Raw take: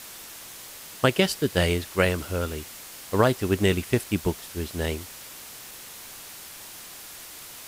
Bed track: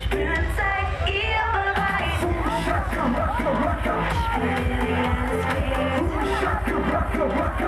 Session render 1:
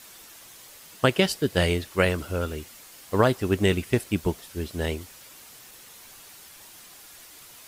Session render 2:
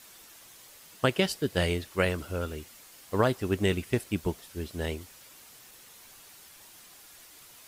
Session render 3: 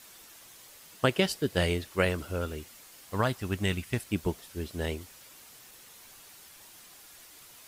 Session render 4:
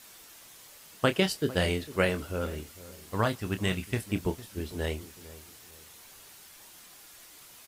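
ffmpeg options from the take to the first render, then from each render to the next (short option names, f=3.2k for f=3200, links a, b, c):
-af "afftdn=nr=7:nf=-43"
-af "volume=-4.5dB"
-filter_complex "[0:a]asettb=1/sr,asplit=3[a][b][c];[a]atrim=end=3.134[d];[b]atrim=start=3.13:end=4.09,asetpts=PTS-STARTPTS,afade=t=in:d=0.004:c=qsin,afade=t=out:st=0.956:d=0.004:c=qsin,equalizer=f=400:w=1.1:g=-8[e];[c]atrim=start=4.086[f];[d][e]acrossfade=d=0.004:c1=hsin:c2=qsin[g];[g][f]acrossfade=d=0.004:c1=qsin:c2=hsin"
-filter_complex "[0:a]asplit=2[a][b];[b]adelay=27,volume=-10dB[c];[a][c]amix=inputs=2:normalize=0,asplit=2[d][e];[e]adelay=453,lowpass=f=960:p=1,volume=-16dB,asplit=2[f][g];[g]adelay=453,lowpass=f=960:p=1,volume=0.32,asplit=2[h][i];[i]adelay=453,lowpass=f=960:p=1,volume=0.32[j];[d][f][h][j]amix=inputs=4:normalize=0"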